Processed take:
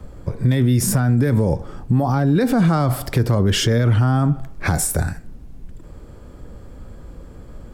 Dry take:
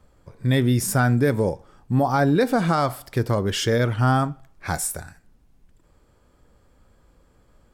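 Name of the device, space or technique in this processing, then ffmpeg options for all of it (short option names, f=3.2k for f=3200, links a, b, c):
mastering chain: -filter_complex "[0:a]equalizer=f=900:t=o:w=0.77:g=-2,acrossover=split=290|640[a][b][c];[a]acompressor=threshold=-23dB:ratio=4[d];[b]acompressor=threshold=-36dB:ratio=4[e];[c]acompressor=threshold=-26dB:ratio=4[f];[d][e][f]amix=inputs=3:normalize=0,acompressor=threshold=-29dB:ratio=2,tiltshelf=f=730:g=5,asoftclip=type=hard:threshold=-17dB,alimiter=level_in=24dB:limit=-1dB:release=50:level=0:latency=1,volume=-8.5dB"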